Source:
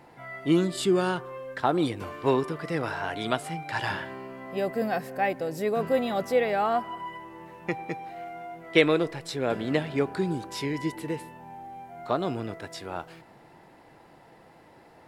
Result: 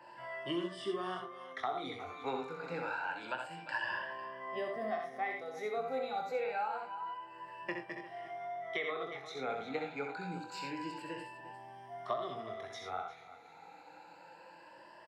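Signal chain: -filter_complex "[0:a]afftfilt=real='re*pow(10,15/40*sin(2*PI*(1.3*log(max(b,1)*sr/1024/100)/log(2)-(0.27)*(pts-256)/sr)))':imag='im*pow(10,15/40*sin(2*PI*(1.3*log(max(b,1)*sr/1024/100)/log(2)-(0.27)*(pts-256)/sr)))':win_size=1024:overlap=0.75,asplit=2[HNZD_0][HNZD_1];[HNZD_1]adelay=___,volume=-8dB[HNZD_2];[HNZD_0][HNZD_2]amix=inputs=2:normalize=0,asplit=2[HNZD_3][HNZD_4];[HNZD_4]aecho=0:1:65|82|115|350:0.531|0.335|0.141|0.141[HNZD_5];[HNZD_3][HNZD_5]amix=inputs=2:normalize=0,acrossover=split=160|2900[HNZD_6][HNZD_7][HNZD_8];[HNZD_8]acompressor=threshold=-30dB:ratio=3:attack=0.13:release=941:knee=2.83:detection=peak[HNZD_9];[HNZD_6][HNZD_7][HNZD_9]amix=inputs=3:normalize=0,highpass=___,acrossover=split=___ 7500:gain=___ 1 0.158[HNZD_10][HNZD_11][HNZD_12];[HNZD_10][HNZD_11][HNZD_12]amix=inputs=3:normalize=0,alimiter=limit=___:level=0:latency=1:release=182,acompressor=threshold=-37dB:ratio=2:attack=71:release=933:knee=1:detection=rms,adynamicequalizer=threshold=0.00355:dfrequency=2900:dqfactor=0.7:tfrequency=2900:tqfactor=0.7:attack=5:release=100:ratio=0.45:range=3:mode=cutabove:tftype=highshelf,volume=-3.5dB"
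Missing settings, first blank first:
23, 72, 540, 0.224, -14dB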